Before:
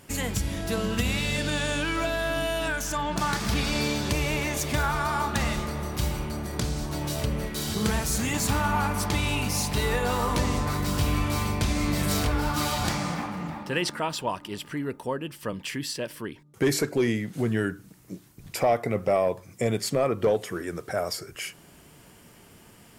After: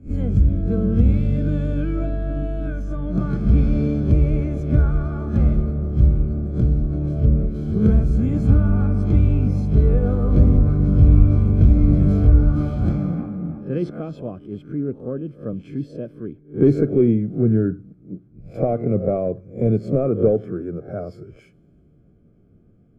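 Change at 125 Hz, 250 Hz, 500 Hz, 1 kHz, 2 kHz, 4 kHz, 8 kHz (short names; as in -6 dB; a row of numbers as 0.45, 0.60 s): +12.5 dB, +9.0 dB, +4.0 dB, -9.5 dB, under -10 dB, under -20 dB, under -25 dB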